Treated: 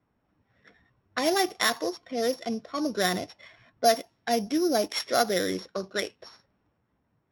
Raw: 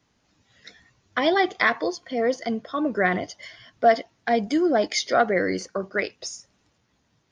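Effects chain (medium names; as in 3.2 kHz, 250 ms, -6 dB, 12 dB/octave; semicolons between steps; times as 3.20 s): sorted samples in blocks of 8 samples; level-controlled noise filter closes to 1.8 kHz, open at -18 dBFS; trim -4 dB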